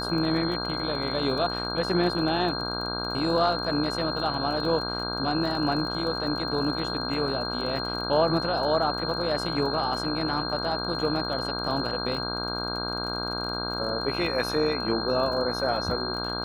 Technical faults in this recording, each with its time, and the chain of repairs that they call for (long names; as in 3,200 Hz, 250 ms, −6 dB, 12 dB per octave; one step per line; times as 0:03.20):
mains buzz 60 Hz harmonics 27 −33 dBFS
surface crackle 35 per second −35 dBFS
whistle 4,200 Hz −32 dBFS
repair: click removal
hum removal 60 Hz, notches 27
notch filter 4,200 Hz, Q 30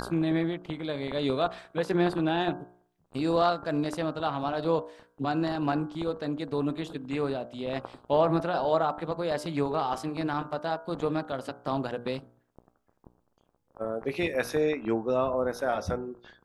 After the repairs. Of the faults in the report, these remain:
none of them is left